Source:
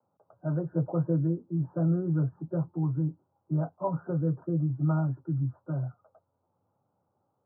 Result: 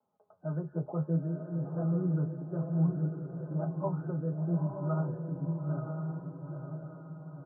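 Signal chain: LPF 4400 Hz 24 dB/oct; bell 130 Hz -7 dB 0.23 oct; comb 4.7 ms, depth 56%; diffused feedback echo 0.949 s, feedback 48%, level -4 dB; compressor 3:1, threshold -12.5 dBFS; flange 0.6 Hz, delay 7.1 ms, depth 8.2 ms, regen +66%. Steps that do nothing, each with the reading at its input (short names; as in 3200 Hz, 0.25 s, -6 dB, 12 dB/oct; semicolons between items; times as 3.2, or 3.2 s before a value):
LPF 4400 Hz: input band ends at 1000 Hz; compressor, threshold -12.5 dBFS: input peak -16.0 dBFS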